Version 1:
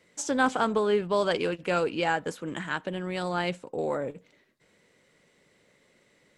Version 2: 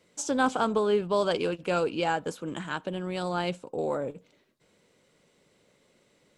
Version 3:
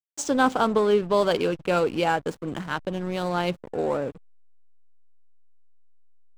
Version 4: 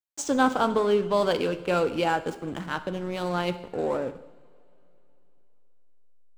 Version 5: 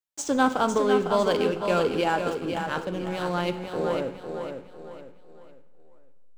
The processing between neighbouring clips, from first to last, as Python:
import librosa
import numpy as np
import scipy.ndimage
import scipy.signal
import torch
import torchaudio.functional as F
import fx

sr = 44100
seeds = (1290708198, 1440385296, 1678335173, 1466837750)

y1 = fx.peak_eq(x, sr, hz=1900.0, db=-8.0, octaves=0.46)
y2 = fx.backlash(y1, sr, play_db=-35.5)
y2 = y2 * librosa.db_to_amplitude(4.5)
y3 = fx.rev_double_slope(y2, sr, seeds[0], early_s=0.84, late_s=3.5, knee_db=-20, drr_db=10.0)
y3 = y3 * librosa.db_to_amplitude(-2.0)
y4 = fx.echo_feedback(y3, sr, ms=503, feedback_pct=36, wet_db=-6.5)